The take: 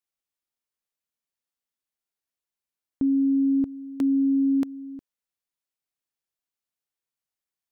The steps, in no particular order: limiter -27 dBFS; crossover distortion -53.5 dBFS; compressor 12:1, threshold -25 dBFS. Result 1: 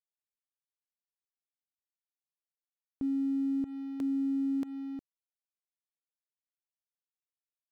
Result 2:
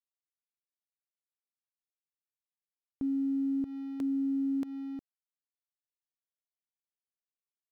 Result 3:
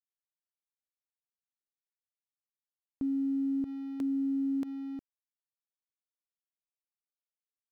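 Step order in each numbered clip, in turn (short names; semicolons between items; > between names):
compressor > crossover distortion > limiter; crossover distortion > compressor > limiter; crossover distortion > limiter > compressor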